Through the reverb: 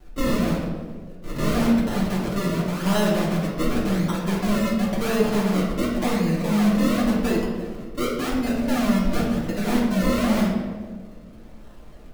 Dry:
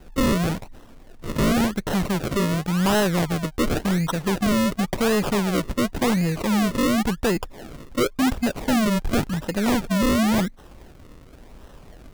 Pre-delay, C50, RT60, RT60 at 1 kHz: 3 ms, 1.5 dB, 1.7 s, 1.3 s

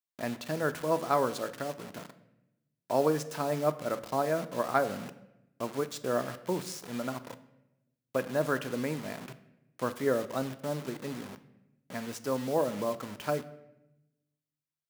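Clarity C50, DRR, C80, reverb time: 15.0 dB, 11.0 dB, 17.0 dB, 0.90 s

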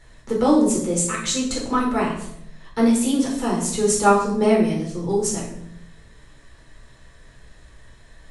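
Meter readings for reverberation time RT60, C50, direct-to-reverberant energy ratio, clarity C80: 0.80 s, 5.0 dB, -4.5 dB, 8.5 dB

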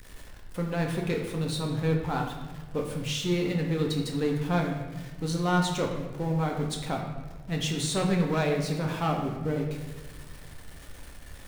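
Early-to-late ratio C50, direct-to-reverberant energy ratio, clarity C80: 4.5 dB, 0.5 dB, 6.5 dB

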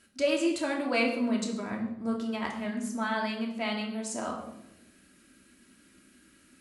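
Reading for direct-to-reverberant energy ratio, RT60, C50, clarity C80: -1.0 dB, 0.95 s, 6.5 dB, 9.0 dB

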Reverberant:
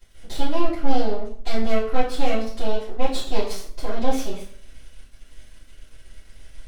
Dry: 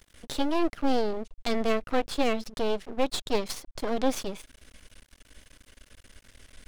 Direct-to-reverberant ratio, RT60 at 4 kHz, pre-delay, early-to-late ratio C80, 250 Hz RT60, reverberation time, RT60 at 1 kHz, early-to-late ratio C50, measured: -15.0 dB, 0.40 s, 3 ms, 10.5 dB, 0.55 s, 0.55 s, 0.50 s, 6.0 dB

